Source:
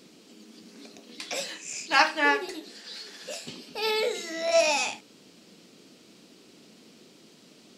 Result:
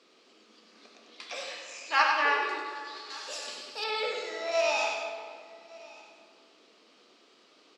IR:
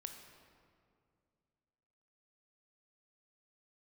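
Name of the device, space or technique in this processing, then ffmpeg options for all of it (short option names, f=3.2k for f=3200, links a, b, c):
station announcement: -filter_complex "[0:a]highpass=190,highpass=450,lowpass=4.7k,equalizer=f=1.2k:t=o:w=0.23:g=8.5,aecho=1:1:96.21|195.3:0.562|0.282[a];[1:a]atrim=start_sample=2205[b];[a][b]afir=irnorm=-1:irlink=0,asettb=1/sr,asplit=3[c][d][e];[c]atrim=end=3.104[f];[d]atrim=start=3.1:end=3.84,asetpts=PTS-STARTPTS,afade=t=in:d=0.004:c=qsin,afade=t=out:st=0.736:d=0.004:c=qsin,bass=f=250:g=0,treble=f=4k:g=13[g];[e]atrim=start=3.836[h];[f][g]acrossfade=d=0.004:c1=hsin:c2=qsin[i];[i][h]acrossfade=d=0.004:c1=qsin:c2=hsin,aecho=1:1:1163:0.075"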